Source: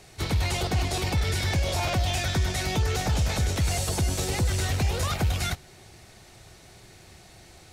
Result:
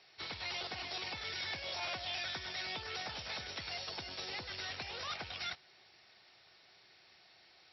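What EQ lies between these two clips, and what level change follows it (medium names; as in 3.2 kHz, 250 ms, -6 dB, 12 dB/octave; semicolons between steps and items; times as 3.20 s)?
high-pass 1.5 kHz 6 dB/octave; brick-wall FIR low-pass 5.7 kHz; -6.5 dB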